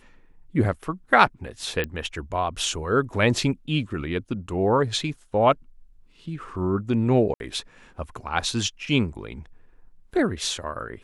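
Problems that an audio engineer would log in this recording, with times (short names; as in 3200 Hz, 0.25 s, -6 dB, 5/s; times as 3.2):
1.84 pop -14 dBFS
7.34–7.4 gap 61 ms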